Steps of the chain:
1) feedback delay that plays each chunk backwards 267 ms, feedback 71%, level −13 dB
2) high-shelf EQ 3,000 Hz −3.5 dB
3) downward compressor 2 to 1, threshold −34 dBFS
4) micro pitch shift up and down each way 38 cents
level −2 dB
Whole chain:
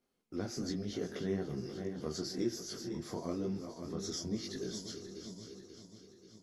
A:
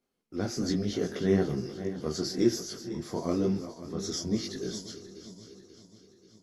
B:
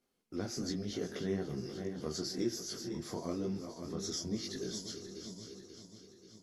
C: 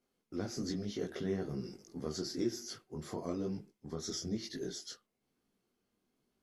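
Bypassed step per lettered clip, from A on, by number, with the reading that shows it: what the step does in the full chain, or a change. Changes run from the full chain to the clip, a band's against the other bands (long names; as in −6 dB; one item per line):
3, average gain reduction 5.0 dB
2, 8 kHz band +2.5 dB
1, change in momentary loudness spread −5 LU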